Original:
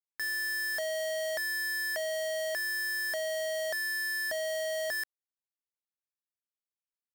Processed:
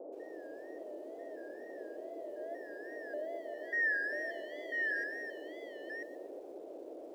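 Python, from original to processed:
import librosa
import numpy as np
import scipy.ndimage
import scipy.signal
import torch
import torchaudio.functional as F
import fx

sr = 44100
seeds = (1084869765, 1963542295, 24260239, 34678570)

y = fx.spec_expand(x, sr, power=1.6)
y = fx.filter_sweep_bandpass(y, sr, from_hz=250.0, to_hz=2400.0, start_s=2.05, end_s=4.14, q=4.9)
y = fx.wow_flutter(y, sr, seeds[0], rate_hz=2.1, depth_cents=120.0)
y = y + 10.0 ** (-3.0 / 20.0) * np.pad(y, (int(992 * sr / 1000.0), 0))[:len(y)]
y = fx.dmg_noise_band(y, sr, seeds[1], low_hz=300.0, high_hz=650.0, level_db=-50.0)
y = fx.echo_crushed(y, sr, ms=123, feedback_pct=35, bits=10, wet_db=-15)
y = F.gain(torch.from_numpy(y), 3.0).numpy()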